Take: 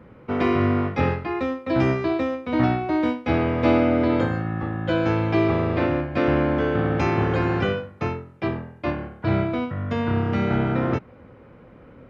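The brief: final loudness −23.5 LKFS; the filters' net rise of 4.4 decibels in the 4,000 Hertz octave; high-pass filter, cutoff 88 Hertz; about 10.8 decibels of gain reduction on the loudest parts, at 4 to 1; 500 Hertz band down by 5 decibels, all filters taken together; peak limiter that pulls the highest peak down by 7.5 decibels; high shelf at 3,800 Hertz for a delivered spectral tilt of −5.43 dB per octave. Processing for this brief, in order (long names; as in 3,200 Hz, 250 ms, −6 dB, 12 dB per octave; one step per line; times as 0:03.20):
high-pass filter 88 Hz
parametric band 500 Hz −7 dB
high-shelf EQ 3,800 Hz +4.5 dB
parametric band 4,000 Hz +3.5 dB
downward compressor 4 to 1, threshold −31 dBFS
level +12 dB
brickwall limiter −14 dBFS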